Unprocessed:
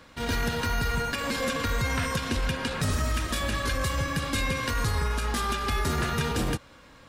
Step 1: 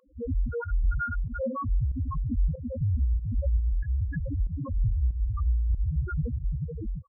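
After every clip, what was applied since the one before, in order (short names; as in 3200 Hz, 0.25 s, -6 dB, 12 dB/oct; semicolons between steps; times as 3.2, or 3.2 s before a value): echo 0.435 s -4 dB; loudest bins only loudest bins 1; pump 94 bpm, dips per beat 1, -15 dB, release 0.121 s; gain +8.5 dB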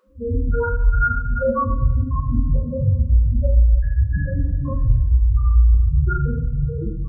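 two-slope reverb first 0.69 s, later 1.8 s, from -16 dB, DRR -7.5 dB; gain +2.5 dB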